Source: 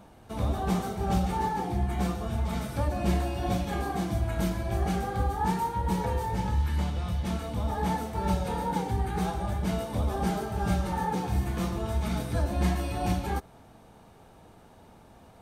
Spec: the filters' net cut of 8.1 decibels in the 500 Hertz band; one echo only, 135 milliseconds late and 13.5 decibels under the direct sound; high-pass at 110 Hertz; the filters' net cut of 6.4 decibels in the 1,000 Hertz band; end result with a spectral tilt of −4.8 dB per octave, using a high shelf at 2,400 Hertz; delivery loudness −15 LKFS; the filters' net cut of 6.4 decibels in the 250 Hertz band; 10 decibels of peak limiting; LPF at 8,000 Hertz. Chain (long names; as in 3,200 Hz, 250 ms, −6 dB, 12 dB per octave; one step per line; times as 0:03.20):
high-pass filter 110 Hz
low-pass filter 8,000 Hz
parametric band 250 Hz −8 dB
parametric band 500 Hz −7 dB
parametric band 1,000 Hz −5.5 dB
high-shelf EQ 2,400 Hz +4 dB
brickwall limiter −30.5 dBFS
single-tap delay 135 ms −13.5 dB
level +24.5 dB